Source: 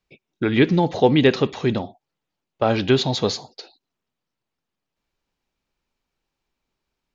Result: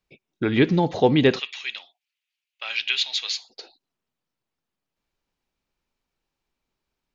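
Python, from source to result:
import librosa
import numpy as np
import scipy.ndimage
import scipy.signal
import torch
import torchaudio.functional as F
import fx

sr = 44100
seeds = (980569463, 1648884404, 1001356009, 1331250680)

y = fx.highpass_res(x, sr, hz=2500.0, q=2.8, at=(1.38, 3.49), fade=0.02)
y = y * librosa.db_to_amplitude(-2.0)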